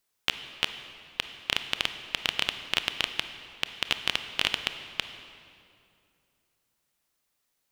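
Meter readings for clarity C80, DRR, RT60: 10.5 dB, 8.5 dB, 2.5 s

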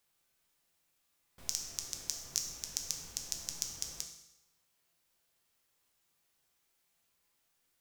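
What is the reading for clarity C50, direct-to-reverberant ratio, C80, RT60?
7.0 dB, 3.0 dB, 9.5 dB, 0.85 s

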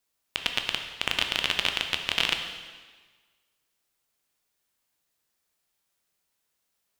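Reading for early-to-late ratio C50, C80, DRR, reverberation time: 6.5 dB, 8.0 dB, 4.5 dB, 1.4 s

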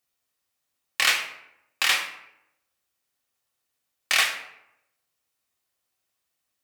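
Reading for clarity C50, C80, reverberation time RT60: 8.0 dB, 10.5 dB, 0.80 s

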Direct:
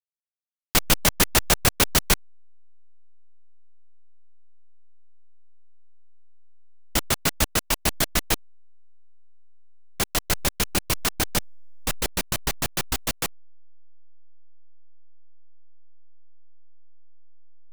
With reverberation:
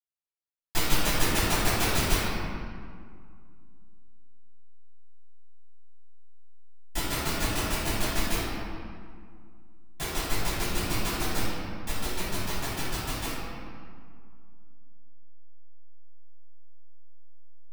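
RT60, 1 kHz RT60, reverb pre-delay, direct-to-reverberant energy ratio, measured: 2.1 s, 2.1 s, 3 ms, −11.5 dB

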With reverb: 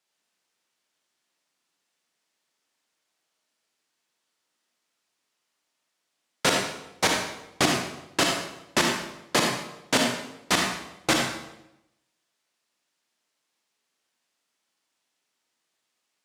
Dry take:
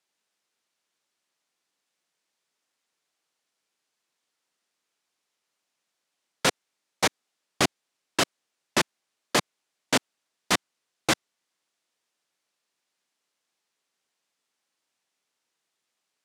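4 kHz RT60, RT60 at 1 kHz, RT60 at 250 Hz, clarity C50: 0.75 s, 0.85 s, 0.95 s, 1.5 dB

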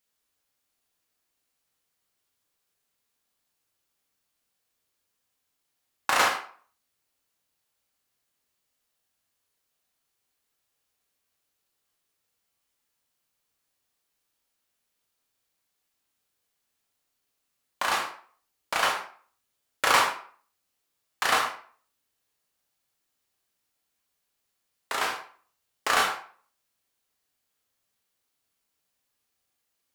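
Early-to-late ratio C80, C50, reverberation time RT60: 10.5 dB, 6.0 dB, 0.45 s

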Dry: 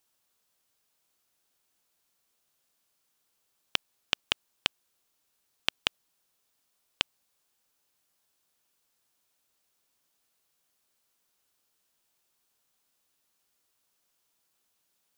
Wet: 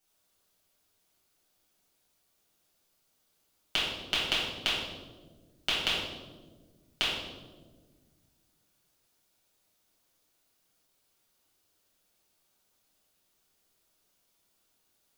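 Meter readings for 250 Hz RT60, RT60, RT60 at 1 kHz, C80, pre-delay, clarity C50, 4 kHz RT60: 2.4 s, 1.5 s, 1.2 s, 3.0 dB, 6 ms, 0.0 dB, 0.85 s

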